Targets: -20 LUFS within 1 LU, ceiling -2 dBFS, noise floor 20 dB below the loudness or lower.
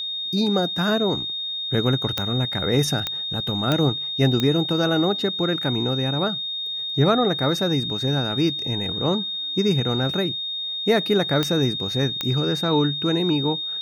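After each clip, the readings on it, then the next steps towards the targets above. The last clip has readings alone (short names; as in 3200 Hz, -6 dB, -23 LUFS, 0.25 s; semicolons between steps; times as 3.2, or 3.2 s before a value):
clicks 6; steady tone 3700 Hz; tone level -26 dBFS; loudness -22.0 LUFS; peak -6.5 dBFS; loudness target -20.0 LUFS
-> de-click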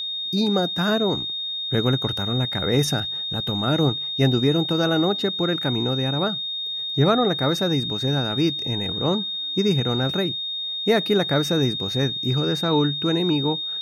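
clicks 0; steady tone 3700 Hz; tone level -26 dBFS
-> notch 3700 Hz, Q 30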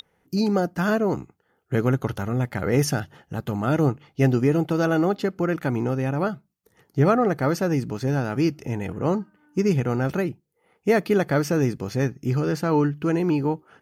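steady tone none; loudness -24.0 LUFS; peak -8.0 dBFS; loudness target -20.0 LUFS
-> gain +4 dB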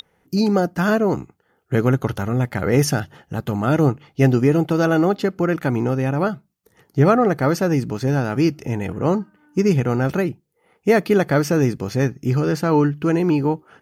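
loudness -20.0 LUFS; peak -4.0 dBFS; noise floor -65 dBFS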